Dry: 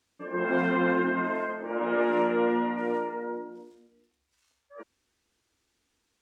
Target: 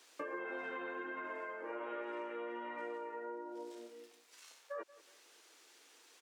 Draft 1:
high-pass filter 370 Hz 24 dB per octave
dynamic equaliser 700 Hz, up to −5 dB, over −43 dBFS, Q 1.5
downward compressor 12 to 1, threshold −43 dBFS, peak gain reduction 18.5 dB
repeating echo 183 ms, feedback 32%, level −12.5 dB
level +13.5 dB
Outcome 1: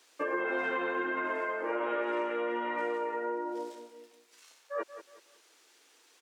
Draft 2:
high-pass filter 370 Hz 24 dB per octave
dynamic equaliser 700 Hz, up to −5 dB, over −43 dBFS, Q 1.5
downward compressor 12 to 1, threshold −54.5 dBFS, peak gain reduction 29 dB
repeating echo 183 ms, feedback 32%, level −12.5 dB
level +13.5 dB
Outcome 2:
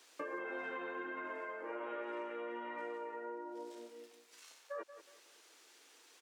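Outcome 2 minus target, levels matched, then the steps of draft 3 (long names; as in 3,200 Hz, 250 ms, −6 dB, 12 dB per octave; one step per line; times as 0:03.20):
echo-to-direct +6.5 dB
high-pass filter 370 Hz 24 dB per octave
dynamic equaliser 700 Hz, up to −5 dB, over −43 dBFS, Q 1.5
downward compressor 12 to 1, threshold −54.5 dBFS, peak gain reduction 29 dB
repeating echo 183 ms, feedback 32%, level −19 dB
level +13.5 dB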